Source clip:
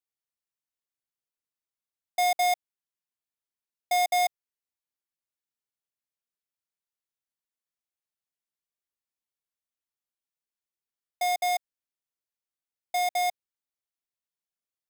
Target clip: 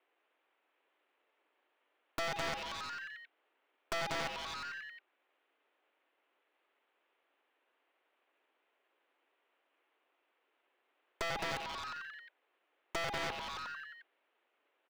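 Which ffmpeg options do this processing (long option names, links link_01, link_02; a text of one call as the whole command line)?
ffmpeg -i in.wav -filter_complex "[0:a]aeval=exprs='(mod(63.1*val(0)+1,2)-1)/63.1':channel_layout=same,asetrate=36028,aresample=44100,atempo=1.22405,highpass=frequency=230:width_type=q:width=0.5412,highpass=frequency=230:width_type=q:width=1.307,lowpass=frequency=2900:width_type=q:width=0.5176,lowpass=frequency=2900:width_type=q:width=0.7071,lowpass=frequency=2900:width_type=q:width=1.932,afreqshift=84,acrusher=bits=8:mode=log:mix=0:aa=0.000001,tiltshelf=frequency=970:gain=3.5,asplit=2[link_01][link_02];[link_02]asplit=8[link_03][link_04][link_05][link_06][link_07][link_08][link_09][link_10];[link_03]adelay=89,afreqshift=150,volume=-9dB[link_11];[link_04]adelay=178,afreqshift=300,volume=-12.9dB[link_12];[link_05]adelay=267,afreqshift=450,volume=-16.8dB[link_13];[link_06]adelay=356,afreqshift=600,volume=-20.6dB[link_14];[link_07]adelay=445,afreqshift=750,volume=-24.5dB[link_15];[link_08]adelay=534,afreqshift=900,volume=-28.4dB[link_16];[link_09]adelay=623,afreqshift=1050,volume=-32.3dB[link_17];[link_10]adelay=712,afreqshift=1200,volume=-36.1dB[link_18];[link_11][link_12][link_13][link_14][link_15][link_16][link_17][link_18]amix=inputs=8:normalize=0[link_19];[link_01][link_19]amix=inputs=2:normalize=0,acompressor=threshold=-52dB:ratio=5,aeval=exprs='clip(val(0),-1,0.00211)':channel_layout=same,aeval=exprs='0.00668*(cos(1*acos(clip(val(0)/0.00668,-1,1)))-cos(1*PI/2))+0.000335*(cos(6*acos(clip(val(0)/0.00668,-1,1)))-cos(6*PI/2))+0.00266*(cos(7*acos(clip(val(0)/0.00668,-1,1)))-cos(7*PI/2))':channel_layout=same,volume=17.5dB" out.wav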